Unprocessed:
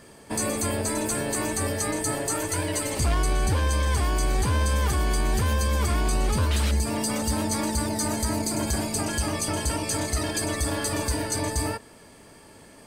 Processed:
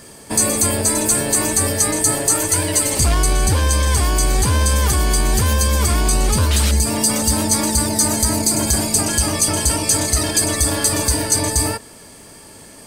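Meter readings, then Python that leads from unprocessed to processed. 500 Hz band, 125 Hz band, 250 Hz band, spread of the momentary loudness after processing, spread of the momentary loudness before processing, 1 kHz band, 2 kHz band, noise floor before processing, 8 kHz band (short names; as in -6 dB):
+6.0 dB, +7.0 dB, +6.5 dB, 2 LU, 3 LU, +6.0 dB, +6.5 dB, -50 dBFS, +13.5 dB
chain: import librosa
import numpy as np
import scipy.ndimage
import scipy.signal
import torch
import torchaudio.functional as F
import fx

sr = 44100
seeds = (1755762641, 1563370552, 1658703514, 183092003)

y = fx.bass_treble(x, sr, bass_db=1, treble_db=8)
y = F.gain(torch.from_numpy(y), 6.0).numpy()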